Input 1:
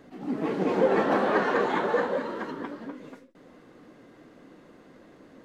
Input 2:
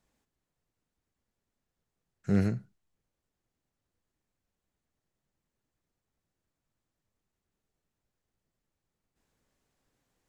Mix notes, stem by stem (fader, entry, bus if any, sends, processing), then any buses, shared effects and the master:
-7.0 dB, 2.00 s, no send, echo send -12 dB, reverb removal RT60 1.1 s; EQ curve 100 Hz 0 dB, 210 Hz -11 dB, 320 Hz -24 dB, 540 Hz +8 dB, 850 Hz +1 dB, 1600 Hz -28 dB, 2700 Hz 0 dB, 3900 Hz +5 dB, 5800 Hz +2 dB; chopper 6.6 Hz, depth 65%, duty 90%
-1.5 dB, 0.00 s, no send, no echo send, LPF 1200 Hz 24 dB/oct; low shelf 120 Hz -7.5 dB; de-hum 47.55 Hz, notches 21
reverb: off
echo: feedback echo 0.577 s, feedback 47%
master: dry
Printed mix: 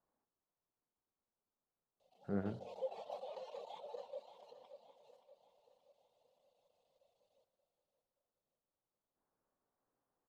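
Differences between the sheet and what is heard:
stem 1 -7.0 dB -> -19.0 dB; master: extra low shelf 370 Hz -11.5 dB

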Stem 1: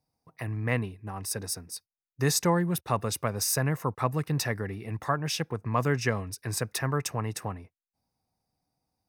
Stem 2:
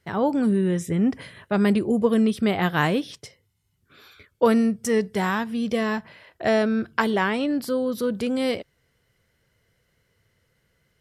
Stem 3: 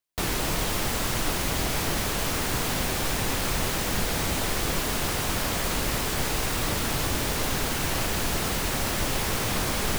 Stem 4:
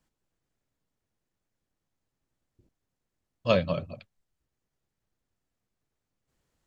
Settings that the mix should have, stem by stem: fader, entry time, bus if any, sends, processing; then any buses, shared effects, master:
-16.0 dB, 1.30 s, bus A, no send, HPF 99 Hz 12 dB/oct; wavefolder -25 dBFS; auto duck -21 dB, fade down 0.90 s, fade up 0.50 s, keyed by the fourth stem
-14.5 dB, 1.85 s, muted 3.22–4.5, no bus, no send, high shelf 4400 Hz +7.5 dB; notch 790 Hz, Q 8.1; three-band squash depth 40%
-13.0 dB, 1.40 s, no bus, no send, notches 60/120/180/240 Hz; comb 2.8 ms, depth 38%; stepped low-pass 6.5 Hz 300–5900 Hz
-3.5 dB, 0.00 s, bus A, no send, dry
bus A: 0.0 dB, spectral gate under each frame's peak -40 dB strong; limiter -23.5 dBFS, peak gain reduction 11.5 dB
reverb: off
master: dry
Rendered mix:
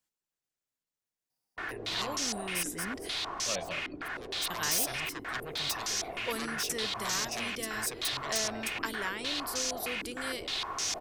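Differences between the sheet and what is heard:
stem 1 -16.0 dB -> -9.0 dB; stem 4 -3.5 dB -> -10.5 dB; master: extra tilt +3 dB/oct

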